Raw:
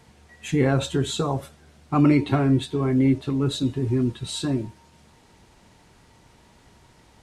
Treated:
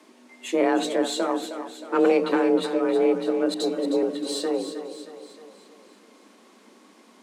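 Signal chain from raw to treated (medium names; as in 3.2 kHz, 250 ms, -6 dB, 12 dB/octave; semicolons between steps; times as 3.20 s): single-diode clipper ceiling -19.5 dBFS; frequency shift +170 Hz; 3.54–4.03 s: phase dispersion highs, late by 62 ms, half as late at 1.4 kHz; on a send: two-band feedback delay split 430 Hz, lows 232 ms, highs 313 ms, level -9.5 dB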